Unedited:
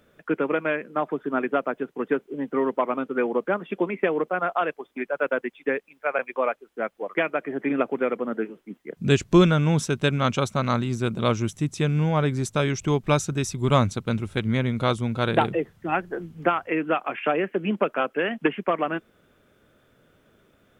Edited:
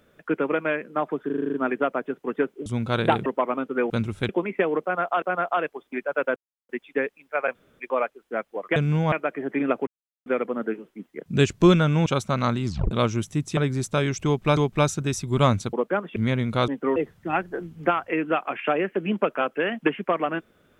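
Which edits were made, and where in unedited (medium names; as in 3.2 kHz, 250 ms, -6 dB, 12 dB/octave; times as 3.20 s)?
1.26 s: stutter 0.04 s, 8 plays
2.38–2.66 s: swap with 14.95–15.55 s
3.30–3.73 s: swap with 14.04–14.43 s
4.26–4.66 s: loop, 2 plays
5.40 s: insert silence 0.33 s
6.26 s: insert room tone 0.25 s
7.97 s: insert silence 0.39 s
9.77–10.32 s: delete
10.92 s: tape stop 0.25 s
11.83–12.19 s: move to 7.22 s
12.88–13.19 s: loop, 2 plays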